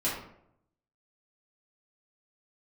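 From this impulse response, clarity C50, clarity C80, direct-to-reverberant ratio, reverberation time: 3.0 dB, 7.0 dB, -9.0 dB, 0.70 s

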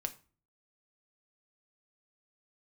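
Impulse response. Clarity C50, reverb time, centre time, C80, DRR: 16.5 dB, 0.40 s, 5 ms, 21.5 dB, 6.5 dB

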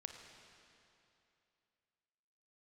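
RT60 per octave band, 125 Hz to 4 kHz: 2.8, 2.8, 2.8, 2.8, 2.7, 2.5 s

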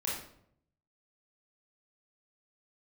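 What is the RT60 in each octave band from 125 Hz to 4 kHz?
1.0, 0.85, 0.75, 0.60, 0.50, 0.45 s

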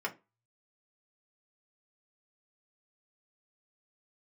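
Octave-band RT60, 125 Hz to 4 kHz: 0.80, 0.25, 0.30, 0.25, 0.20, 0.20 s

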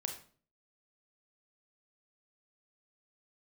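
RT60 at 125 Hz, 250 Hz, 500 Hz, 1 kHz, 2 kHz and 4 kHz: 0.60, 0.60, 0.50, 0.40, 0.35, 0.35 s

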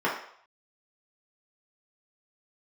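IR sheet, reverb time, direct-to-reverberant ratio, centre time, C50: 0.65 s, -6.0 dB, 34 ms, 5.5 dB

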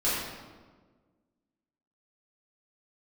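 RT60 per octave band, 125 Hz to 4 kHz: 1.8, 1.9, 1.6, 1.3, 1.1, 0.90 s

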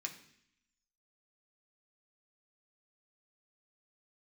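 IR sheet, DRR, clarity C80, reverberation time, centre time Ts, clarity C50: 1.0 dB, 13.5 dB, 0.65 s, 13 ms, 11.0 dB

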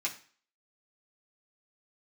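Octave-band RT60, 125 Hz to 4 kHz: 0.40, 0.40, 0.40, 0.45, 0.45, 0.45 s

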